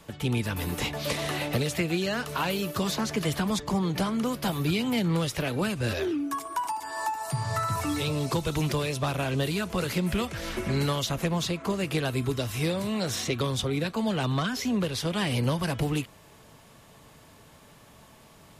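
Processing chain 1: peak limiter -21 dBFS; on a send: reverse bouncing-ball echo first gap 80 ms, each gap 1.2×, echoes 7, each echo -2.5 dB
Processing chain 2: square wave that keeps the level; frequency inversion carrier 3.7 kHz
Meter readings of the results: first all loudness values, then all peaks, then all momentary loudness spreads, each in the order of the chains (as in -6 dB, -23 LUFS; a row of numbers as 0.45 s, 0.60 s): -26.5 LUFS, -21.0 LUFS; -13.5 dBFS, -10.0 dBFS; 3 LU, 4 LU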